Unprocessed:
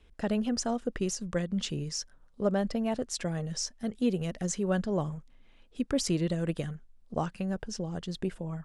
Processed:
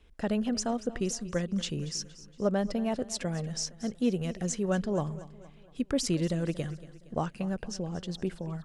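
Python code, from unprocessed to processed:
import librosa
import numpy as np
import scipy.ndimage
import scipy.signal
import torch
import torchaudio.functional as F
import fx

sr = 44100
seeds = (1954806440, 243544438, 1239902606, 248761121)

y = fx.echo_feedback(x, sr, ms=233, feedback_pct=47, wet_db=-17.0)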